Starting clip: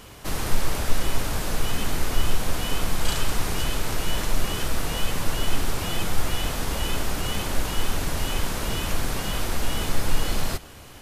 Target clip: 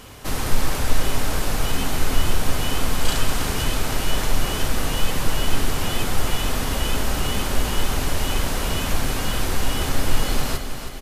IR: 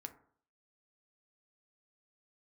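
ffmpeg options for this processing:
-filter_complex "[0:a]aecho=1:1:321|642|963|1284|1605|1926:0.355|0.177|0.0887|0.0444|0.0222|0.0111,asplit=2[link_01][link_02];[1:a]atrim=start_sample=2205,asetrate=40572,aresample=44100[link_03];[link_02][link_03]afir=irnorm=-1:irlink=0,volume=6dB[link_04];[link_01][link_04]amix=inputs=2:normalize=0,volume=-4dB"

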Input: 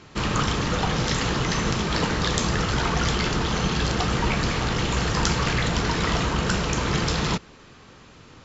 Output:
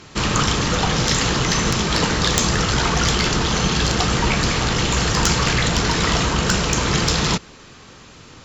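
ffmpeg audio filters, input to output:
ffmpeg -i in.wav -af "aemphasis=mode=production:type=cd,aeval=exprs='1.26*(cos(1*acos(clip(val(0)/1.26,-1,1)))-cos(1*PI/2))+0.398*(cos(4*acos(clip(val(0)/1.26,-1,1)))-cos(4*PI/2))+0.501*(cos(5*acos(clip(val(0)/1.26,-1,1)))-cos(5*PI/2))+0.1*(cos(6*acos(clip(val(0)/1.26,-1,1)))-cos(6*PI/2))':channel_layout=same,volume=-5dB" out.wav

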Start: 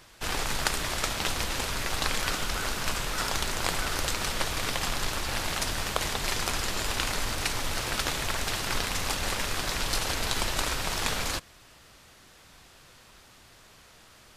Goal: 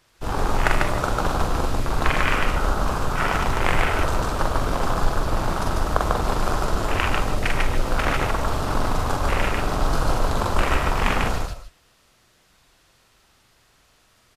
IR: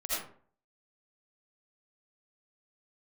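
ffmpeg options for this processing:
-filter_complex "[0:a]afwtdn=0.0316,aecho=1:1:43.73|145.8:0.708|0.794,asplit=2[link_01][link_02];[1:a]atrim=start_sample=2205,afade=type=out:start_time=0.14:duration=0.01,atrim=end_sample=6615,adelay=77[link_03];[link_02][link_03]afir=irnorm=-1:irlink=0,volume=-13dB[link_04];[link_01][link_04]amix=inputs=2:normalize=0,volume=7.5dB"

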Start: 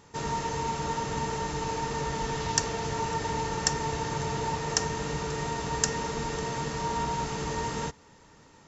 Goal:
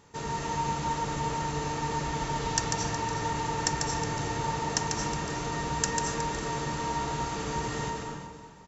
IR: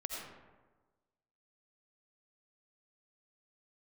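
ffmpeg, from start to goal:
-filter_complex "[0:a]bandreject=frequency=5200:width=26,aecho=1:1:366:0.224,asplit=2[link_01][link_02];[1:a]atrim=start_sample=2205,adelay=144[link_03];[link_02][link_03]afir=irnorm=-1:irlink=0,volume=-1.5dB[link_04];[link_01][link_04]amix=inputs=2:normalize=0,volume=-2.5dB"

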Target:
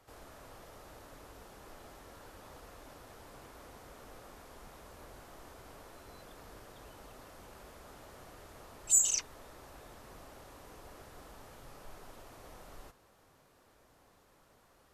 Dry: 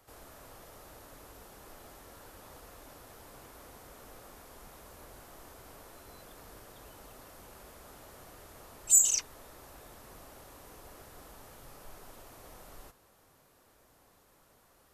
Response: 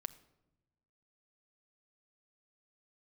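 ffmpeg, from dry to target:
-af "highshelf=frequency=10000:gain=-11.5"

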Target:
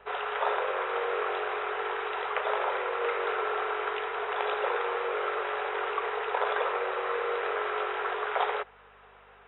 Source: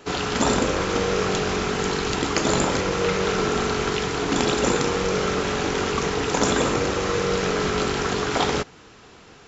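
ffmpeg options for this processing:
ffmpeg -i in.wav -filter_complex "[0:a]afftfilt=real='re*between(b*sr/4096,370,3900)':imag='im*between(b*sr/4096,370,3900)':win_size=4096:overlap=0.75,aeval=exprs='val(0)+0.00447*(sin(2*PI*50*n/s)+sin(2*PI*2*50*n/s)/2+sin(2*PI*3*50*n/s)/3+sin(2*PI*4*50*n/s)/4+sin(2*PI*5*50*n/s)/5)':channel_layout=same,acrossover=split=470 2400:gain=0.158 1 0.141[link_01][link_02][link_03];[link_01][link_02][link_03]amix=inputs=3:normalize=0,volume=-2.5dB" out.wav

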